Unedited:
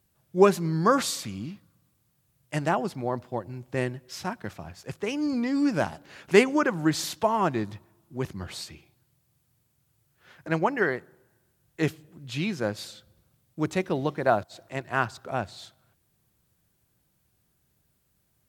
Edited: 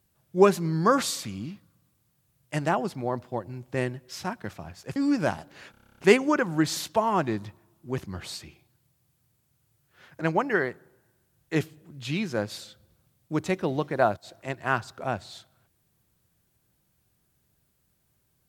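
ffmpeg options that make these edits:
-filter_complex "[0:a]asplit=11[a][b][c][d][e][f][g][h][i][j][k];[a]atrim=end=4.962[l];[b]atrim=start=5.498:end=6.282[m];[c]atrim=start=6.248:end=6.282[n];[d]atrim=start=6.248:end=6.282[o];[e]atrim=start=6.248:end=6.282[p];[f]atrim=start=6.248:end=6.282[q];[g]atrim=start=6.248:end=6.282[r];[h]atrim=start=6.248:end=6.282[s];[i]atrim=start=6.248:end=6.282[t];[j]atrim=start=6.248:end=6.282[u];[k]atrim=start=6.248[v];[l][m]acrossfade=d=0.004:c1=hsin:c2=hsin[w];[w][n]acrossfade=d=0.004:c1=hsin:c2=hsin[x];[x][o]acrossfade=d=0.004:c1=hsin:c2=hsin[y];[y][p]acrossfade=d=0.004:c1=hsin:c2=hsin[z];[z][q]acrossfade=d=0.004:c1=hsin:c2=hsin[aa];[aa][r]acrossfade=d=0.004:c1=hsin:c2=hsin[ab];[ab][s]acrossfade=d=0.004:c1=hsin:c2=hsin[ac];[ac][t]acrossfade=d=0.004:c1=hsin:c2=hsin[ad];[ad][u]acrossfade=d=0.004:c1=hsin:c2=hsin[ae];[ae][v]acrossfade=d=0.004:c1=hsin:c2=hsin"

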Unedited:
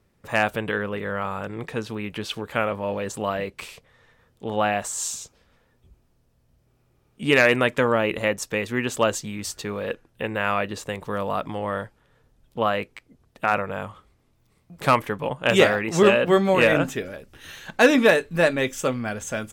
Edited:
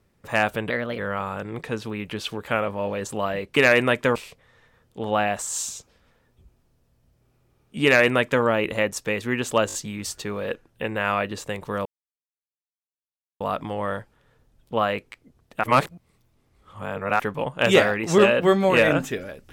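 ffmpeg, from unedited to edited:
-filter_complex "[0:a]asplit=11[a][b][c][d][e][f][g][h][i][j][k];[a]atrim=end=0.704[l];[b]atrim=start=0.7:end=1.03,asetpts=PTS-STARTPTS,asetrate=51156,aresample=44100[m];[c]atrim=start=1.026:end=3.612[n];[d]atrim=start=7.298:end=7.892[o];[e]atrim=start=3.608:end=9.152[p];[f]atrim=start=9.128:end=9.152[q];[g]atrim=start=9.128:end=9.152[r];[h]atrim=start=9.128:end=11.25,asetpts=PTS-STARTPTS,afade=t=out:st=2.118:d=0.004:c=hsin,apad=pad_dur=1.55[s];[i]atrim=start=11.25:end=13.482,asetpts=PTS-STARTPTS,afade=t=in:d=0.004:c=hsin[t];[j]atrim=start=13.478:end=15.042,asetpts=PTS-STARTPTS,areverse[u];[k]atrim=start=15.038[v];[l][m]acrossfade=d=0.004:c1=hsin:c2=hsin[w];[w][n]acrossfade=d=0.004:c1=hsin:c2=hsin[x];[x][o]acrossfade=d=0.004:c1=hsin:c2=hsin[y];[y][p]acrossfade=d=0.004:c1=hsin:c2=hsin[z];[z][q]acrossfade=d=0.004:c1=hsin:c2=hsin[aa];[aa][r]acrossfade=d=0.004:c1=hsin:c2=hsin[ab];[s][t]concat=n=2:v=0:a=1[ac];[ab][ac]acrossfade=d=0.004:c1=hsin:c2=hsin[ad];[ad][u]acrossfade=d=0.004:c1=hsin:c2=hsin[ae];[ae][v]acrossfade=d=0.004:c1=hsin:c2=hsin"

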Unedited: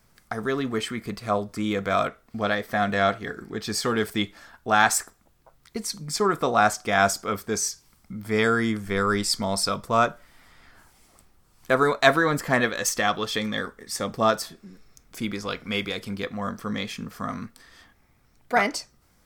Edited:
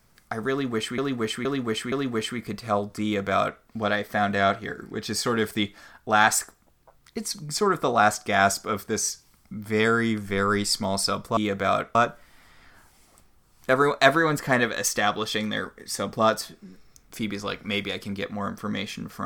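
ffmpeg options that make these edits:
-filter_complex "[0:a]asplit=6[a][b][c][d][e][f];[a]atrim=end=0.982[g];[b]atrim=start=0.508:end=0.982[h];[c]atrim=start=0.508:end=0.982[i];[d]atrim=start=0.508:end=9.962[j];[e]atrim=start=1.628:end=2.212[k];[f]atrim=start=9.958[l];[g][h]acrossfade=d=0.004:c1=hsin:c2=hsin[m];[m][i]acrossfade=d=0.004:c1=hsin:c2=hsin[n];[n][j]acrossfade=d=0.004:c1=hsin:c2=hsin[o];[o][k]acrossfade=d=0.004:c1=hsin:c2=hsin[p];[p][l]acrossfade=d=0.004:c1=hsin:c2=hsin"

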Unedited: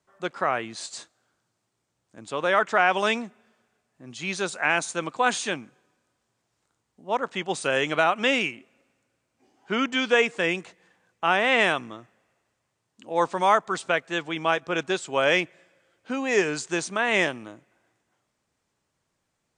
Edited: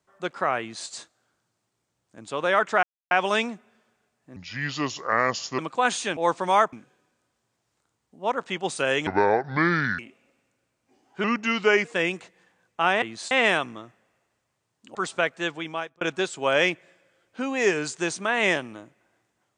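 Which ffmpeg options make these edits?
-filter_complex "[0:a]asplit=14[a][b][c][d][e][f][g][h][i][j][k][l][m][n];[a]atrim=end=2.83,asetpts=PTS-STARTPTS,afade=t=out:st=2.826:d=0.004:c=hsin,apad=pad_dur=0.28[o];[b]atrim=start=2.83:end=4.084,asetpts=PTS-STARTPTS,afade=t=in:d=0.004:c=hsin[p];[c]atrim=start=4.08:end=5,asetpts=PTS-STARTPTS,asetrate=33075,aresample=44100[q];[d]atrim=start=4.996:end=5.582[r];[e]atrim=start=13.098:end=13.662[s];[f]atrim=start=5.578:end=7.924[t];[g]atrim=start=7.92:end=8.5,asetpts=PTS-STARTPTS,asetrate=27783,aresample=44100[u];[h]atrim=start=8.496:end=9.754[v];[i]atrim=start=9.75:end=10.29,asetpts=PTS-STARTPTS,asetrate=38808,aresample=44100,atrim=end_sample=27061,asetpts=PTS-STARTPTS[w];[j]atrim=start=10.286:end=11.462[x];[k]atrim=start=0.598:end=0.892[y];[l]atrim=start=11.458:end=13.102[z];[m]atrim=start=13.658:end=14.72,asetpts=PTS-STARTPTS,afade=t=out:st=0.522:d=0.54[aa];[n]atrim=start=14.72,asetpts=PTS-STARTPTS,afade=t=in:d=0.004:c=hsin[ab];[o][p]concat=n=2:v=0:a=1[ac];[ac][q]acrossfade=d=0.004:c1=hsin:c2=hsin[ad];[ad][r]acrossfade=d=0.004:c1=hsin:c2=hsin[ae];[ae][s]acrossfade=d=0.004:c1=hsin:c2=hsin[af];[af][t]acrossfade=d=0.004:c1=hsin:c2=hsin[ag];[ag][u]acrossfade=d=0.004:c1=hsin:c2=hsin[ah];[ah][v]acrossfade=d=0.004:c1=hsin:c2=hsin[ai];[ai][w]acrossfade=d=0.004:c1=hsin:c2=hsin[aj];[aj][x]acrossfade=d=0.004:c1=hsin:c2=hsin[ak];[ak][y]acrossfade=d=0.004:c1=hsin:c2=hsin[al];[al][z]acrossfade=d=0.004:c1=hsin:c2=hsin[am];[aa][ab]concat=n=2:v=0:a=1[an];[am][an]acrossfade=d=0.004:c1=hsin:c2=hsin"

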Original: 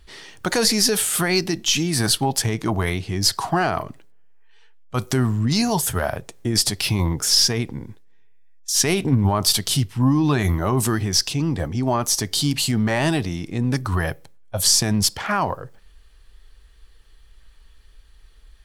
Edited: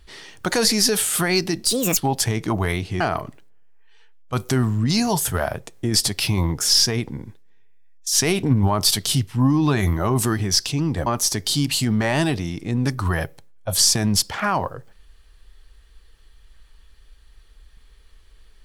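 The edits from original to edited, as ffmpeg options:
-filter_complex "[0:a]asplit=5[a][b][c][d][e];[a]atrim=end=1.644[f];[b]atrim=start=1.64:end=2.15,asetpts=PTS-STARTPTS,asetrate=67473,aresample=44100[g];[c]atrim=start=2.146:end=3.182[h];[d]atrim=start=3.618:end=11.682[i];[e]atrim=start=11.928[j];[f][g]acrossfade=d=0.004:c1=hsin:c2=hsin[k];[k][h]acrossfade=d=0.004:c1=hsin:c2=hsin[l];[l][i]acrossfade=d=0.004:c1=hsin:c2=hsin[m];[m][j]acrossfade=d=0.004:c1=hsin:c2=hsin"

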